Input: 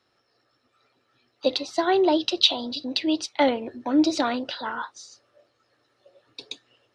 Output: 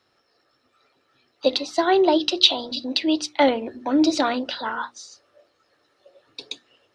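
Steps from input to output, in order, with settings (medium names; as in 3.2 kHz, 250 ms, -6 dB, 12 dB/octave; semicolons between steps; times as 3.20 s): hum notches 60/120/180/240/300/360 Hz; trim +3 dB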